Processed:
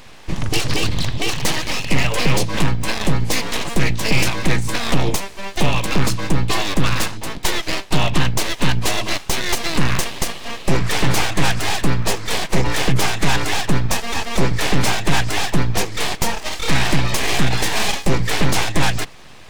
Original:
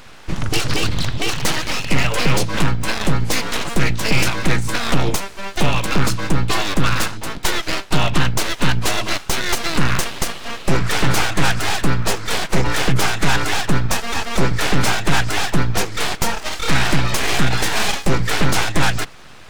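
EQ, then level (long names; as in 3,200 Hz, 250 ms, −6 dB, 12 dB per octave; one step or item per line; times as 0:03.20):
parametric band 1,400 Hz −7 dB 0.29 octaves
0.0 dB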